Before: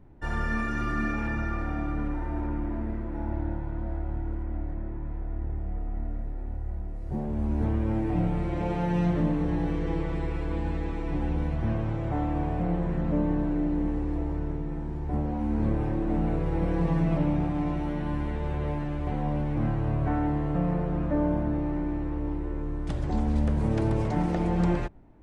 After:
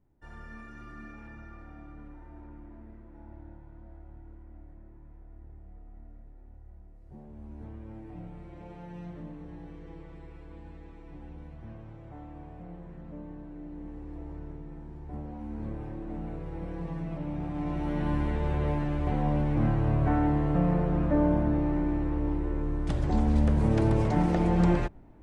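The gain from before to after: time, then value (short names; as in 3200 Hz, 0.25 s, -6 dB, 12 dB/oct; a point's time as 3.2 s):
13.48 s -17 dB
14.33 s -10.5 dB
17.2 s -10.5 dB
18.03 s +1.5 dB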